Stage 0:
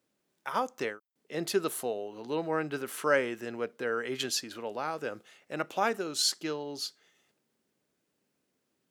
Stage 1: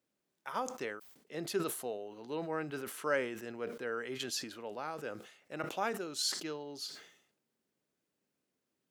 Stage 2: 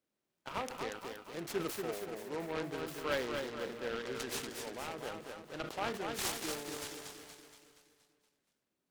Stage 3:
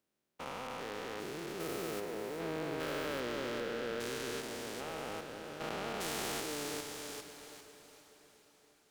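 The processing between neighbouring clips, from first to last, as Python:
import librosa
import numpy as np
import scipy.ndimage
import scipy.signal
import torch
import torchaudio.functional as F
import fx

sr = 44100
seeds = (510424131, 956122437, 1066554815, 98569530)

y1 = fx.sustainer(x, sr, db_per_s=86.0)
y1 = F.gain(torch.from_numpy(y1), -6.5).numpy()
y2 = fx.echo_feedback(y1, sr, ms=236, feedback_pct=53, wet_db=-5.0)
y2 = fx.noise_mod_delay(y2, sr, seeds[0], noise_hz=1300.0, depth_ms=0.083)
y2 = F.gain(torch.from_numpy(y2), -2.5).numpy()
y3 = fx.spec_steps(y2, sr, hold_ms=400)
y3 = fx.echo_diffused(y3, sr, ms=453, feedback_pct=57, wet_db=-14.5)
y3 = F.gain(torch.from_numpy(y3), 3.0).numpy()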